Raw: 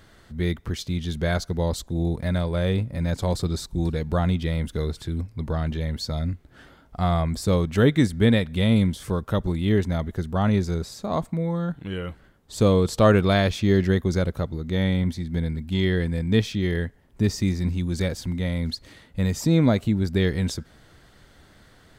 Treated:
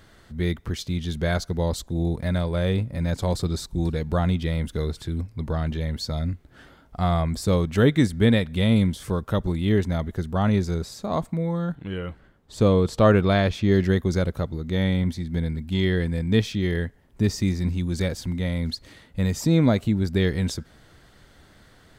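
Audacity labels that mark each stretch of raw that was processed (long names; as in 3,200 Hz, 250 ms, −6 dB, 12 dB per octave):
11.750000	13.720000	high-shelf EQ 4,900 Hz −8.5 dB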